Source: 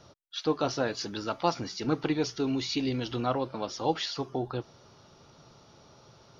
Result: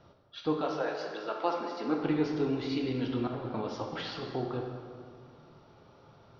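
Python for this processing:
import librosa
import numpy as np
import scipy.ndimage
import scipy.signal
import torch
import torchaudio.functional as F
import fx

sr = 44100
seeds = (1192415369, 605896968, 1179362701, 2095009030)

y = fx.highpass(x, sr, hz=fx.line((0.61, 480.0), (1.99, 210.0)), slope=24, at=(0.61, 1.99), fade=0.02)
y = fx.over_compress(y, sr, threshold_db=-34.0, ratio=-0.5, at=(3.27, 4.27))
y = fx.air_absorb(y, sr, metres=260.0)
y = fx.rev_plate(y, sr, seeds[0], rt60_s=2.1, hf_ratio=0.65, predelay_ms=0, drr_db=1.0)
y = F.gain(torch.from_numpy(y), -2.5).numpy()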